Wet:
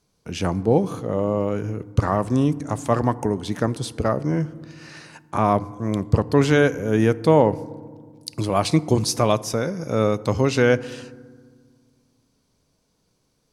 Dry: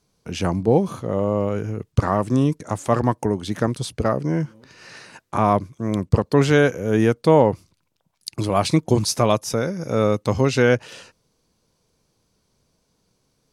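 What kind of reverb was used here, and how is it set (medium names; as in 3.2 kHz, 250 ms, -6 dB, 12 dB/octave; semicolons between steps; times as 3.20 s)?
FDN reverb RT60 1.7 s, low-frequency decay 1.5×, high-frequency decay 0.4×, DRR 17 dB; trim -1 dB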